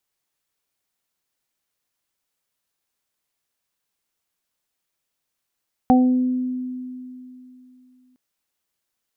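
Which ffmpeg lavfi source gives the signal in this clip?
-f lavfi -i "aevalsrc='0.282*pow(10,-3*t/3.02)*sin(2*PI*253*t)+0.0841*pow(10,-3*t/0.91)*sin(2*PI*506*t)+0.251*pow(10,-3*t/0.34)*sin(2*PI*759*t)':d=2.26:s=44100"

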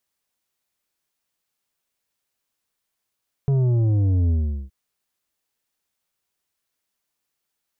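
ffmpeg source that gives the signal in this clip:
-f lavfi -i "aevalsrc='0.141*clip((1.22-t)/0.4,0,1)*tanh(2.51*sin(2*PI*140*1.22/log(65/140)*(exp(log(65/140)*t/1.22)-1)))/tanh(2.51)':d=1.22:s=44100"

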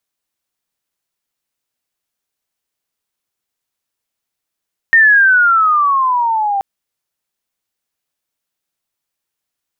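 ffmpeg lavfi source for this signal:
-f lavfi -i "aevalsrc='pow(10,(-4.5-9*t/1.68)/20)*sin(2*PI*1850*1.68/(-15*log(2)/12)*(exp(-15*log(2)/12*t/1.68)-1))':d=1.68:s=44100"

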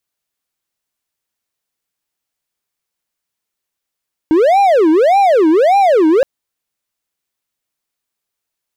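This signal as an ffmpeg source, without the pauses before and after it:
-f lavfi -i "aevalsrc='0.562*(1-4*abs(mod((557*t-247/(2*PI*1.7)*sin(2*PI*1.7*t))+0.25,1)-0.5))':d=1.92:s=44100"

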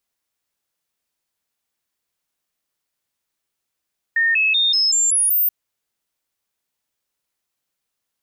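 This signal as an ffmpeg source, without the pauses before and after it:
-f lavfi -i "aevalsrc='0.2*clip(min(mod(t,0.19),0.19-mod(t,0.19))/0.005,0,1)*sin(2*PI*1830*pow(2,floor(t/0.19)/2)*mod(t,0.19))':d=1.33:s=44100"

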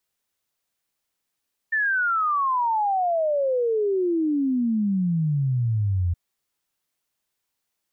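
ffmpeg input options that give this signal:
-f lavfi -i "aevalsrc='0.106*clip(min(t,4.42-t)/0.01,0,1)*sin(2*PI*1800*4.42/log(84/1800)*(exp(log(84/1800)*t/4.42)-1))':d=4.42:s=44100"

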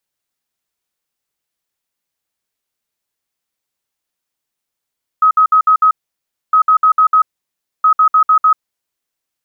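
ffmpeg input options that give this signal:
-f lavfi -i "aevalsrc='0.501*sin(2*PI*1270*t)*clip(min(mod(mod(t,1.31),0.15),0.09-mod(mod(t,1.31),0.15))/0.005,0,1)*lt(mod(t,1.31),0.75)':d=3.93:s=44100"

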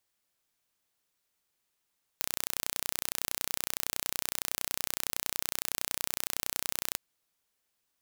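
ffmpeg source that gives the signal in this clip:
-f lavfi -i "aevalsrc='0.631*eq(mod(n,1432),0)':d=4.76:s=44100"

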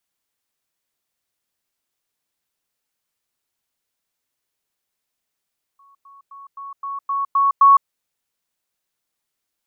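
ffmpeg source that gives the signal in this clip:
-f lavfi -i "aevalsrc='pow(10,(-49+6*floor(t/0.26))/20)*sin(2*PI*1110*t)*clip(min(mod(t,0.26),0.16-mod(t,0.26))/0.005,0,1)':d=2.08:s=44100"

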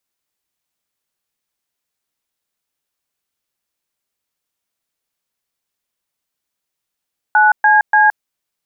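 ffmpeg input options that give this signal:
-f lavfi -i "aevalsrc='0.316*clip(min(mod(t,0.291),0.169-mod(t,0.291))/0.002,0,1)*(eq(floor(t/0.291),0)*(sin(2*PI*852*mod(t,0.291))+sin(2*PI*1477*mod(t,0.291)))+eq(floor(t/0.291),1)*(sin(2*PI*852*mod(t,0.291))+sin(2*PI*1633*mod(t,0.291)))+eq(floor(t/0.291),2)*(sin(2*PI*852*mod(t,0.291))+sin(2*PI*1633*mod(t,0.291))))':d=0.873:s=44100"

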